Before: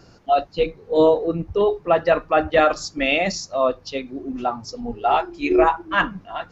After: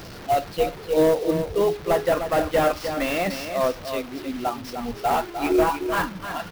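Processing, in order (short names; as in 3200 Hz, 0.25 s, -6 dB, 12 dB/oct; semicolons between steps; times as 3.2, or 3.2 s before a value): delta modulation 32 kbps, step -30.5 dBFS; on a send: echo 0.304 s -8.5 dB; on the sum: clock jitter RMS 0.02 ms; gain -2.5 dB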